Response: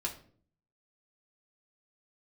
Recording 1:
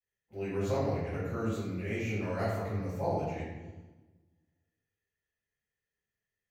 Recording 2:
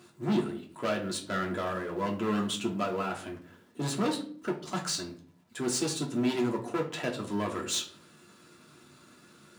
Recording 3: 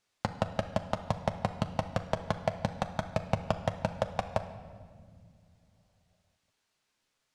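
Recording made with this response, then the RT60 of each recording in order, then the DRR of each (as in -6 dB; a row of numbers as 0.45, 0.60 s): 2; 1.2 s, 0.50 s, not exponential; -13.0, -1.5, 6.5 dB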